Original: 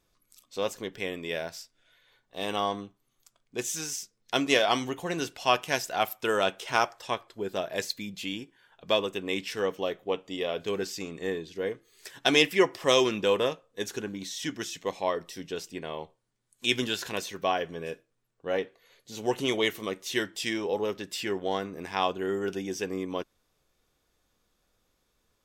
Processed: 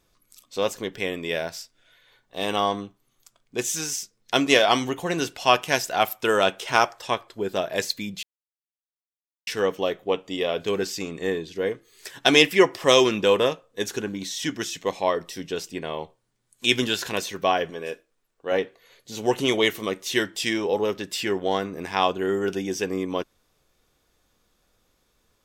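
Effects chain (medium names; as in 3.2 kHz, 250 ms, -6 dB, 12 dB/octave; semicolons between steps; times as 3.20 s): 8.23–9.47 s: mute; 17.70–18.52 s: peaking EQ 110 Hz -13 dB 1.7 oct; trim +5.5 dB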